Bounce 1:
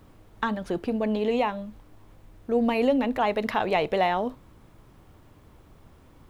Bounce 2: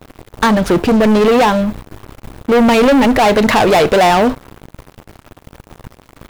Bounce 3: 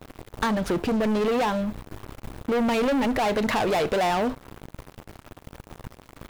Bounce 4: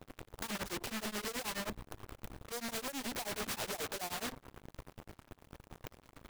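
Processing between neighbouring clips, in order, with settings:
leveller curve on the samples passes 5; level +4 dB
downward compressor 2 to 1, threshold −24 dBFS, peak gain reduction 8.5 dB; level −5 dB
wrap-around overflow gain 25 dB; tremolo along a rectified sine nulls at 9.4 Hz; level −7 dB

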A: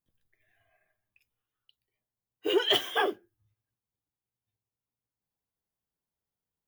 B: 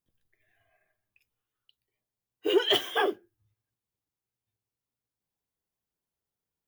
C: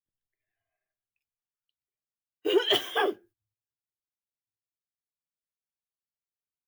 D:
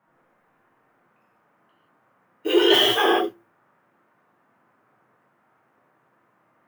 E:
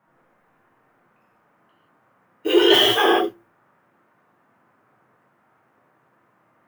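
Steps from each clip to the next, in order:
parametric band 380 Hz +2.5 dB
noise gate −54 dBFS, range −17 dB
noise in a band 120–1,600 Hz −73 dBFS; reverb whose tail is shaped and stops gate 200 ms flat, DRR −5 dB; level +2.5 dB
low-shelf EQ 79 Hz +7 dB; level +2 dB

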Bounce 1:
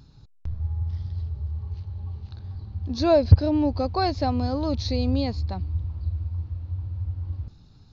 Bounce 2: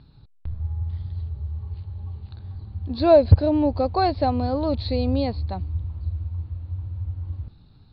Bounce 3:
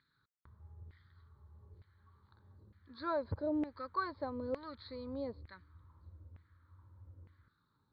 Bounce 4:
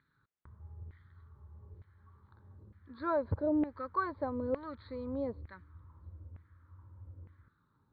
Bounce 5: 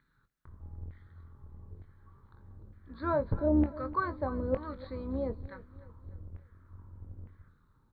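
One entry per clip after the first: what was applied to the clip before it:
Butterworth low-pass 4,500 Hz 72 dB per octave; dynamic equaliser 610 Hz, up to +5 dB, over −39 dBFS, Q 1.1
phaser with its sweep stopped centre 2,700 Hz, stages 6; auto-filter band-pass saw down 1.1 Hz 490–2,100 Hz; level −1 dB
high-frequency loss of the air 430 metres; level +5.5 dB
sub-octave generator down 2 octaves, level 0 dB; double-tracking delay 23 ms −10 dB; repeating echo 298 ms, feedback 43%, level −17.5 dB; level +1.5 dB

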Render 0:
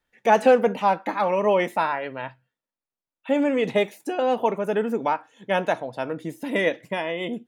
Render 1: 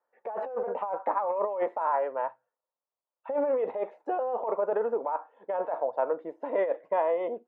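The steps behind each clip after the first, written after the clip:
Chebyshev band-pass filter 500–1,100 Hz, order 2
compressor whose output falls as the input rises −28 dBFS, ratio −1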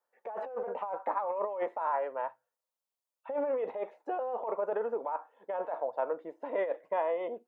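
high-shelf EQ 2,500 Hz +8.5 dB
level −5 dB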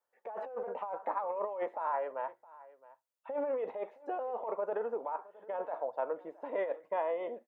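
single-tap delay 666 ms −20.5 dB
level −2.5 dB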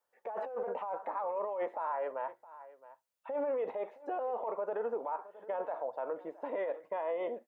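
brickwall limiter −30 dBFS, peak gain reduction 8 dB
level +2.5 dB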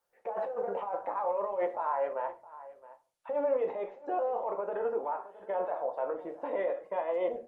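on a send at −5.5 dB: convolution reverb RT60 0.35 s, pre-delay 6 ms
on the sum: level +2 dB
Opus 24 kbit/s 48,000 Hz

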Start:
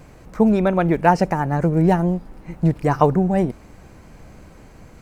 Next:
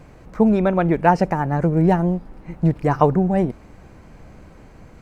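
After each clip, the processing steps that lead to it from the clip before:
high-shelf EQ 5,100 Hz −8.5 dB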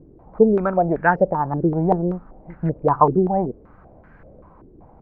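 low-pass on a step sequencer 5.2 Hz 360–1,600 Hz
level −5.5 dB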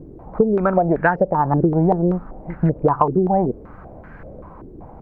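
downward compressor 12 to 1, threshold −21 dBFS, peak gain reduction 14 dB
level +8.5 dB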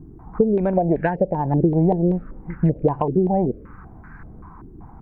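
phaser swept by the level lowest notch 510 Hz, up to 1,300 Hz, full sweep at −14 dBFS

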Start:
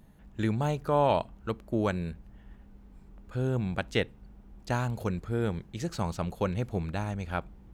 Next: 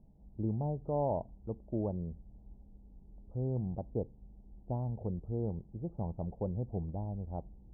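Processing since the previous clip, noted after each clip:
Butterworth low-pass 850 Hz 48 dB per octave
low-shelf EQ 140 Hz +5.5 dB
level −7.5 dB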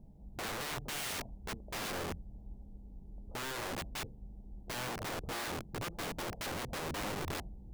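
wrap-around overflow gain 39 dB
level +5 dB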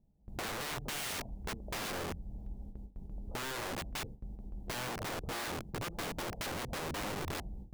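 downward compressor 5 to 1, threshold −43 dBFS, peak gain reduction 6.5 dB
noise gate with hold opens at −42 dBFS
level +6 dB

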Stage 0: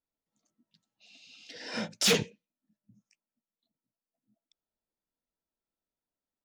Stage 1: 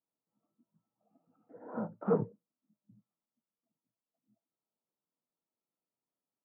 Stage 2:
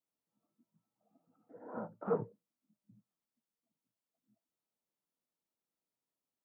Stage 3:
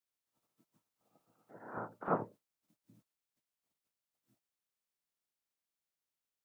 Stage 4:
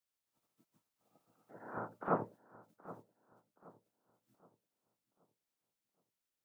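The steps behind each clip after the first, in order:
Chebyshev band-pass filter 110–1,300 Hz, order 5
dynamic equaliser 200 Hz, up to −7 dB, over −44 dBFS, Q 0.76; level −1.5 dB
ceiling on every frequency bin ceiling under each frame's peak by 19 dB
feedback echo with a low-pass in the loop 773 ms, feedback 39%, low-pass 1,700 Hz, level −16.5 dB

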